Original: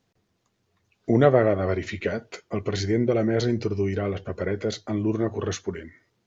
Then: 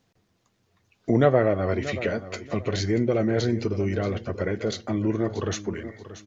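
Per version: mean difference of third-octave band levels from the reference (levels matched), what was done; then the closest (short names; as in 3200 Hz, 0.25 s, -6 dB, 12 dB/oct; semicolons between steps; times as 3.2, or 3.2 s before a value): 2.5 dB: bell 400 Hz -3 dB 0.21 oct; in parallel at -2 dB: compressor, threshold -31 dBFS, peak gain reduction 17.5 dB; on the sum: feedback echo 0.632 s, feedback 27%, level -14 dB; gain -2 dB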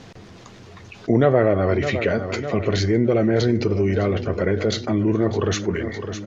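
4.0 dB: air absorption 66 m; on a send: feedback echo 0.608 s, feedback 41%, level -17 dB; on the sum: fast leveller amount 50%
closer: first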